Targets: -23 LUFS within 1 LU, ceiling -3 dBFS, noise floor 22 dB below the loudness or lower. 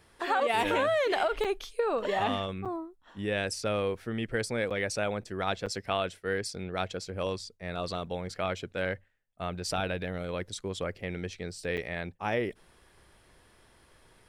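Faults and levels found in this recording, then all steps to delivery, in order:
dropouts 5; longest dropout 6.8 ms; loudness -32.0 LUFS; peak -14.5 dBFS; loudness target -23.0 LUFS
-> interpolate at 1.44/2.65/4.7/5.66/11.77, 6.8 ms; gain +9 dB

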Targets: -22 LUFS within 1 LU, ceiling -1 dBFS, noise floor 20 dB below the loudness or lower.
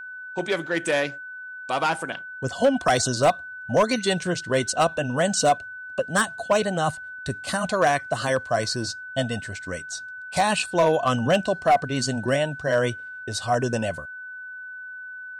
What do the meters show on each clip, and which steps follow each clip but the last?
clipped 0.4%; flat tops at -12.5 dBFS; steady tone 1500 Hz; tone level -35 dBFS; loudness -24.0 LUFS; peak -12.5 dBFS; loudness target -22.0 LUFS
-> clip repair -12.5 dBFS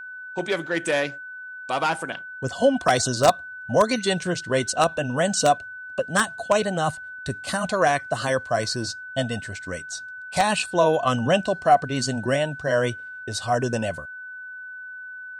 clipped 0.0%; steady tone 1500 Hz; tone level -35 dBFS
-> notch 1500 Hz, Q 30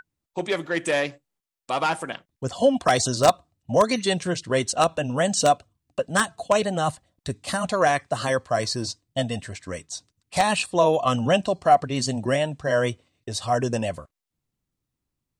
steady tone none; loudness -23.5 LUFS; peak -3.5 dBFS; loudness target -22.0 LUFS
-> gain +1.5 dB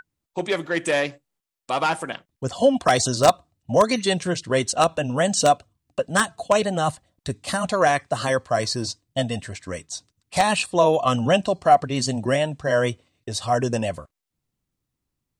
loudness -22.0 LUFS; peak -2.0 dBFS; noise floor -83 dBFS

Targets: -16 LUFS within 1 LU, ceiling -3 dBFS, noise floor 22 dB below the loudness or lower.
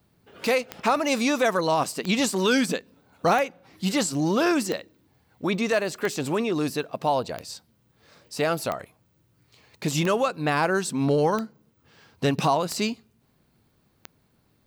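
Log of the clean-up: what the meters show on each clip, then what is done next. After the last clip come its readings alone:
clicks 11; loudness -25.0 LUFS; peak -10.5 dBFS; loudness target -16.0 LUFS
-> de-click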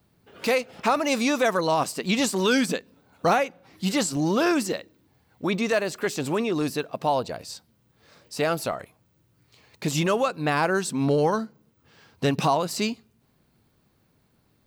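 clicks 0; loudness -25.0 LUFS; peak -10.5 dBFS; loudness target -16.0 LUFS
-> gain +9 dB; limiter -3 dBFS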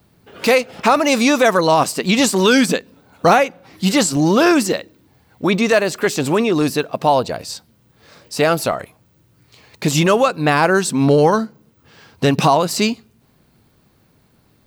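loudness -16.0 LUFS; peak -3.0 dBFS; noise floor -57 dBFS

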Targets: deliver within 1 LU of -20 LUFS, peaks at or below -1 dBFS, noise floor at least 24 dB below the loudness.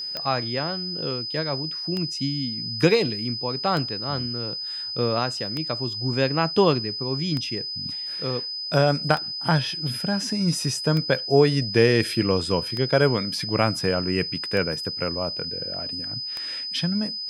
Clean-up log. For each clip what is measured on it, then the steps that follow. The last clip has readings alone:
clicks 10; steady tone 5000 Hz; tone level -29 dBFS; loudness -24.0 LUFS; peak -4.0 dBFS; loudness target -20.0 LUFS
-> de-click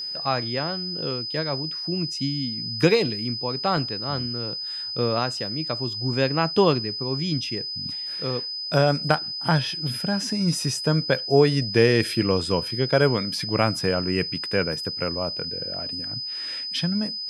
clicks 0; steady tone 5000 Hz; tone level -29 dBFS
-> notch 5000 Hz, Q 30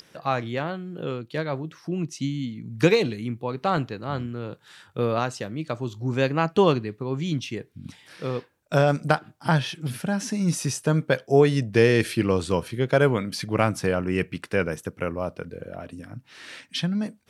steady tone none; loudness -25.0 LUFS; peak -4.0 dBFS; loudness target -20.0 LUFS
-> gain +5 dB; limiter -1 dBFS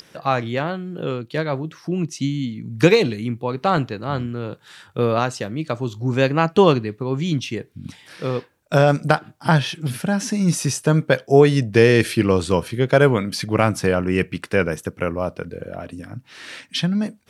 loudness -20.5 LUFS; peak -1.0 dBFS; noise floor -54 dBFS

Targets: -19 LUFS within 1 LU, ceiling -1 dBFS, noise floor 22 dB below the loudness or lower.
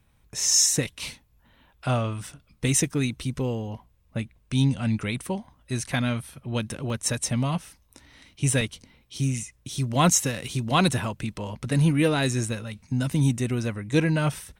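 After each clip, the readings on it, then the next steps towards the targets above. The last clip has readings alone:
dropouts 3; longest dropout 2.3 ms; loudness -25.5 LUFS; peak -8.5 dBFS; loudness target -19.0 LUFS
-> interpolate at 2.27/6.9/8.61, 2.3 ms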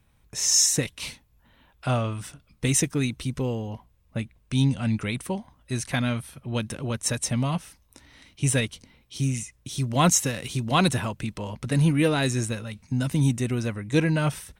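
dropouts 0; loudness -25.5 LUFS; peak -8.5 dBFS; loudness target -19.0 LUFS
-> gain +6.5 dB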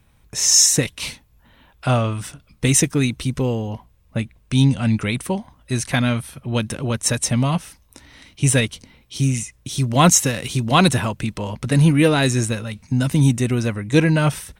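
loudness -19.0 LUFS; peak -2.0 dBFS; noise floor -56 dBFS

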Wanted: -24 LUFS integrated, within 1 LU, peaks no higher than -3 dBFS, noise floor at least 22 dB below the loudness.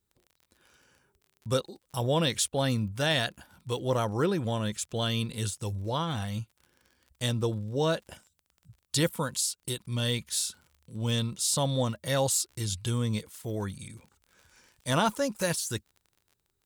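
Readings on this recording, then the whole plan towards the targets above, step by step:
ticks 33/s; loudness -30.0 LUFS; peak -14.0 dBFS; loudness target -24.0 LUFS
-> de-click; gain +6 dB

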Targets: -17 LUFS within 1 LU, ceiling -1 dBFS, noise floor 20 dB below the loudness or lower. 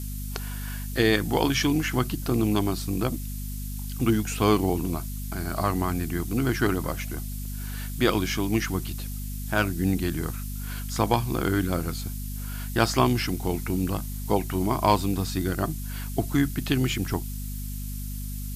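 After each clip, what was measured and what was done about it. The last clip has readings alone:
hum 50 Hz; harmonics up to 250 Hz; hum level -31 dBFS; noise floor -33 dBFS; noise floor target -47 dBFS; loudness -27.0 LUFS; peak -7.0 dBFS; loudness target -17.0 LUFS
-> de-hum 50 Hz, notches 5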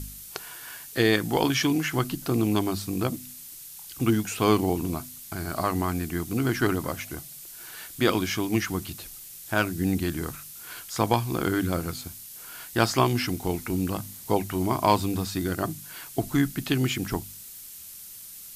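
hum none; noise floor -43 dBFS; noise floor target -47 dBFS
-> denoiser 6 dB, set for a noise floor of -43 dBFS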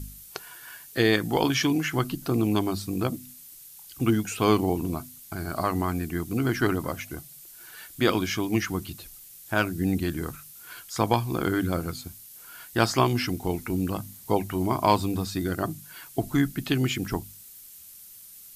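noise floor -48 dBFS; loudness -27.0 LUFS; peak -7.0 dBFS; loudness target -17.0 LUFS
-> gain +10 dB; limiter -1 dBFS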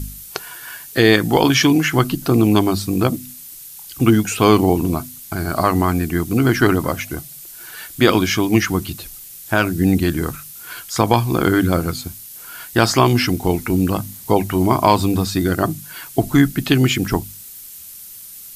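loudness -17.5 LUFS; peak -1.0 dBFS; noise floor -38 dBFS

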